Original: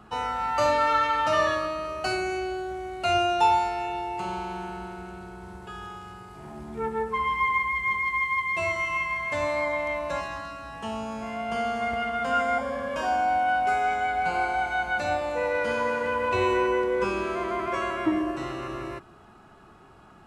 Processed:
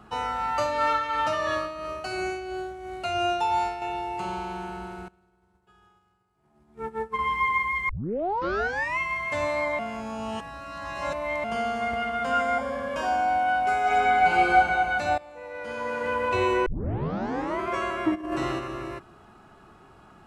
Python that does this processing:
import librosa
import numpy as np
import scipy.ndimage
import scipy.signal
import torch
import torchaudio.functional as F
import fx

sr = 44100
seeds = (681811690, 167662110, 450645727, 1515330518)

y = fx.tremolo(x, sr, hz=2.9, depth=0.51, at=(0.53, 3.82))
y = fx.upward_expand(y, sr, threshold_db=-44.0, expansion=2.5, at=(5.08, 7.19))
y = fx.reverb_throw(y, sr, start_s=13.82, length_s=0.72, rt60_s=2.3, drr_db=-5.5)
y = fx.over_compress(y, sr, threshold_db=-31.0, ratio=-0.5, at=(18.14, 18.58), fade=0.02)
y = fx.edit(y, sr, fx.tape_start(start_s=7.89, length_s=1.1),
    fx.reverse_span(start_s=9.79, length_s=1.65),
    fx.fade_in_from(start_s=15.18, length_s=0.93, curve='qua', floor_db=-17.0),
    fx.tape_start(start_s=16.66, length_s=0.95), tone=tone)